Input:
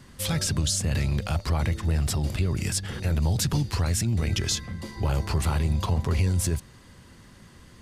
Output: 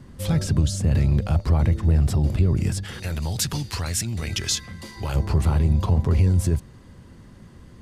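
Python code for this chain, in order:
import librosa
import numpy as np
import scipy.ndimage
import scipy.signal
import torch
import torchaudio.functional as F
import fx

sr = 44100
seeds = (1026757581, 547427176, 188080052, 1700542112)

y = fx.tilt_shelf(x, sr, db=fx.steps((0.0, 6.5), (2.82, -3.5), (5.14, 5.5)), hz=970.0)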